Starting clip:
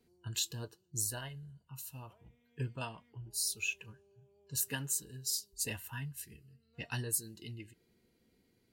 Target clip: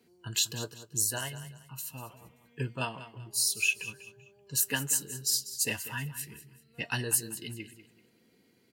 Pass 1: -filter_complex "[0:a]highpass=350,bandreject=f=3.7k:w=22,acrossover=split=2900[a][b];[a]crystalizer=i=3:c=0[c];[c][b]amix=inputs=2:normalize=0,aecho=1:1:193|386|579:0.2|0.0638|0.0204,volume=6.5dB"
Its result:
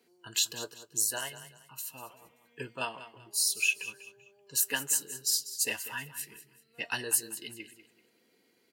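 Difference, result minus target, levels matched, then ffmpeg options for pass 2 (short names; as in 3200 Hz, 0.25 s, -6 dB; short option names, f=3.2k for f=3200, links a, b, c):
125 Hz band -13.5 dB
-filter_complex "[0:a]highpass=140,bandreject=f=3.7k:w=22,acrossover=split=2900[a][b];[a]crystalizer=i=3:c=0[c];[c][b]amix=inputs=2:normalize=0,aecho=1:1:193|386|579:0.2|0.0638|0.0204,volume=6.5dB"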